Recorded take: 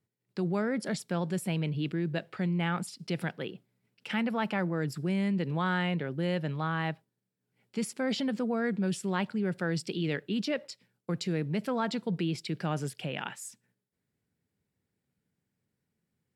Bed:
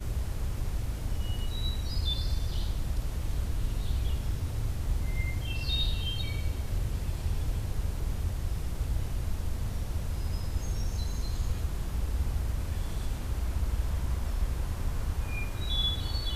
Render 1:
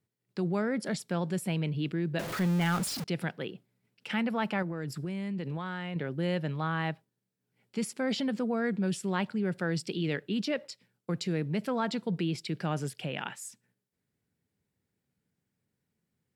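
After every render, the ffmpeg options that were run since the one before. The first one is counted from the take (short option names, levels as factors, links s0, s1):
-filter_complex "[0:a]asettb=1/sr,asplit=3[s0][s1][s2];[s0]atrim=end=2.194[s3];[s1]atrim=start=2.19:end=3.04,asetpts=PTS-STARTPTS,afade=t=in:d=0.004:c=qsin,afade=t=out:st=0.846:d=0.004:c=qsin,aeval=exprs='val(0)+0.5*0.0266*sgn(val(0))':c=same[s4];[s2]atrim=start=3.036[s5];[s3][s4]acrossfade=d=0.004:c1=hsin:c2=qsin[s6];[s6][s5]acrossfade=d=0.004:c1=qsin:c2=hsin,asettb=1/sr,asplit=3[s7][s8][s9];[s7]atrim=end=4.624[s10];[s8]atrim=start=4.62:end=5.96,asetpts=PTS-STARTPTS,afade=t=in:d=0.004:c=qsin,afade=t=out:st=1.336:d=0.004:c=qsin,acompressor=threshold=0.0282:ratio=6:attack=3.2:release=140:knee=1:detection=peak[s11];[s9]atrim=start=5.956[s12];[s10][s11]acrossfade=d=0.004:c1=hsin:c2=qsin[s13];[s13][s12]acrossfade=d=0.004:c1=qsin:c2=hsin"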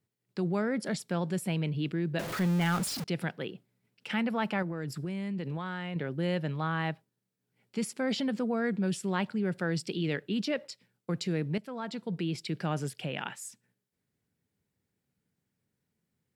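-filter_complex "[0:a]asplit=2[s0][s1];[s0]atrim=end=11.58,asetpts=PTS-STARTPTS,afade=t=out:st=11.576:d=0.004:c=hsin:silence=0.237137[s2];[s1]atrim=start=11.58,asetpts=PTS-STARTPTS,afade=t=in:d=0.87:silence=0.237137[s3];[s2][s3]concat=n=2:v=0:a=1"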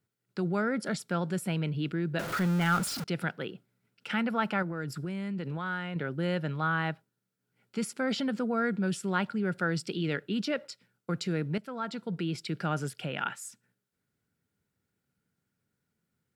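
-af "equalizer=f=1400:w=6.5:g=11"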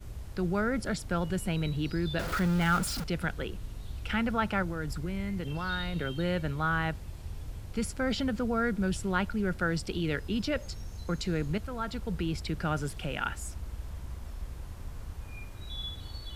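-filter_complex "[1:a]volume=0.335[s0];[0:a][s0]amix=inputs=2:normalize=0"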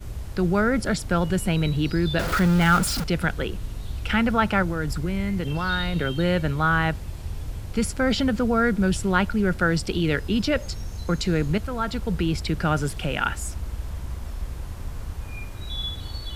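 -af "volume=2.51"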